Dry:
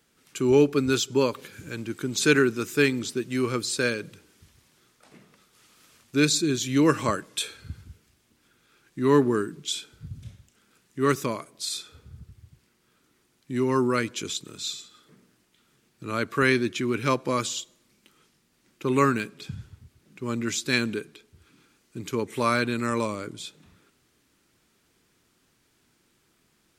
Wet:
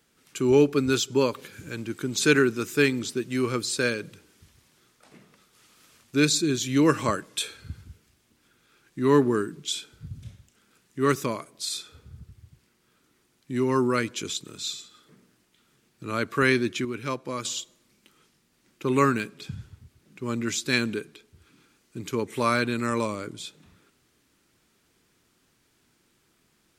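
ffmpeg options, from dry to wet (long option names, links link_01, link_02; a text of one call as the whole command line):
ffmpeg -i in.wav -filter_complex "[0:a]asplit=3[link_01][link_02][link_03];[link_01]atrim=end=16.852[link_04];[link_02]atrim=start=16.848:end=17.452,asetpts=PTS-STARTPTS,volume=-6.5dB[link_05];[link_03]atrim=start=17.448[link_06];[link_04][link_05]acrossfade=duration=0.004:curve1=hsin:curve2=hsin[link_07];[link_07][link_06]acrossfade=duration=0.004:curve1=hsin:curve2=hsin" out.wav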